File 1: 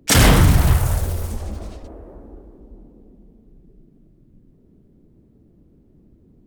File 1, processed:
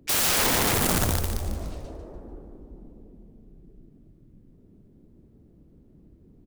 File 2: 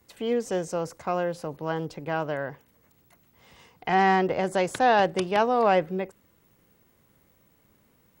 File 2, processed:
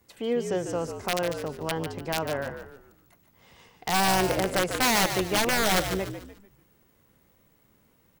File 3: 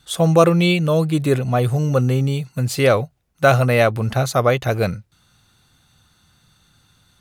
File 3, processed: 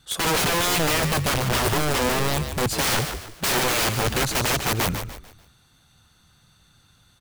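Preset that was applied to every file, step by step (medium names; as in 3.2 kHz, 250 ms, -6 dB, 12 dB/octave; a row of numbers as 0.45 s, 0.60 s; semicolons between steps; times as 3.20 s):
integer overflow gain 16 dB; frequency-shifting echo 147 ms, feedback 36%, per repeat -60 Hz, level -8 dB; peak normalisation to -12 dBFS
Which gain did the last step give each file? -2.5 dB, -1.0 dB, -1.5 dB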